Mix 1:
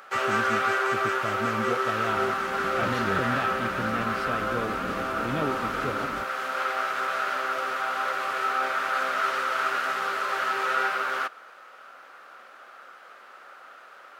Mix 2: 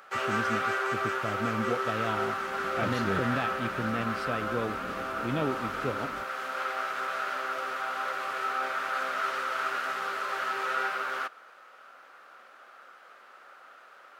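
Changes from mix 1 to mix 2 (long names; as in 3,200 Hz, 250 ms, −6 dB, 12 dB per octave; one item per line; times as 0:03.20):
first sound −4.5 dB
second sound −7.0 dB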